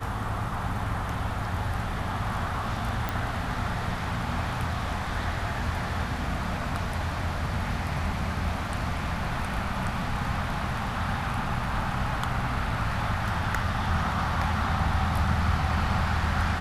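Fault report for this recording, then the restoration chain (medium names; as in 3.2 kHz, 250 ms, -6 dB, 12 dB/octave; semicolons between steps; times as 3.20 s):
3.09 s: pop -14 dBFS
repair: de-click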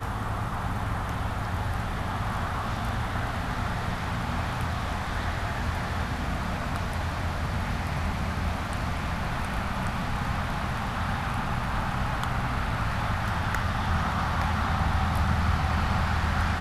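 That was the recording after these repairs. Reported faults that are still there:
nothing left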